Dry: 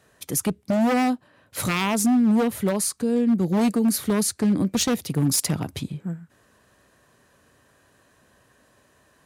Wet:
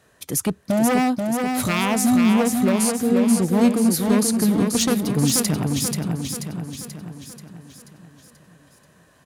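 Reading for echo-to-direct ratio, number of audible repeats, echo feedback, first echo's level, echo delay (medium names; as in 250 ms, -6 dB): -3.0 dB, 6, 53%, -4.5 dB, 484 ms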